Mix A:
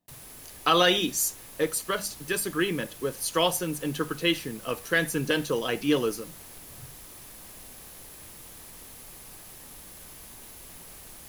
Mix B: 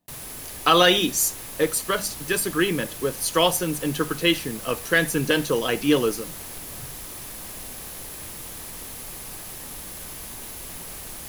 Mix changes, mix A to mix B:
speech +4.5 dB; background +9.0 dB

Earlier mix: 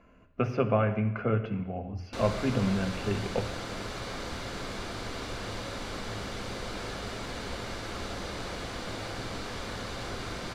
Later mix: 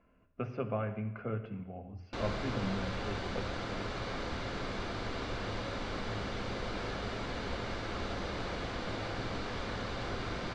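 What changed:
speech -9.0 dB; master: add air absorption 120 m

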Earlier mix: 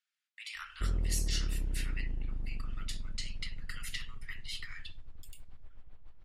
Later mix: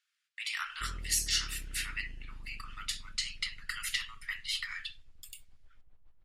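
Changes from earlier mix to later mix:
speech +7.5 dB; background -10.0 dB

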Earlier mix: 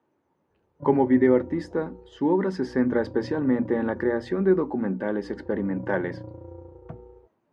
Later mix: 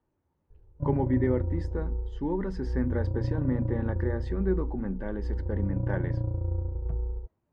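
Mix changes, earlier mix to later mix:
speech -9.0 dB; master: remove HPF 220 Hz 12 dB/oct

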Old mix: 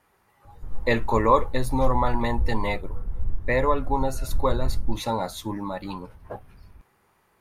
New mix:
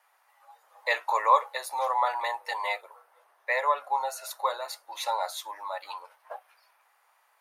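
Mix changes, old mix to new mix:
background -5.0 dB; master: add steep high-pass 610 Hz 36 dB/oct

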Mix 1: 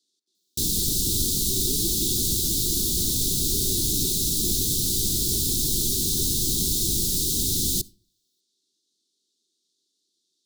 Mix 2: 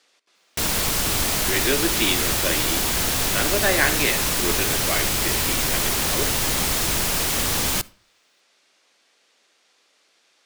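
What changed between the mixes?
speech +9.0 dB; master: remove Chebyshev band-stop 380–3700 Hz, order 4

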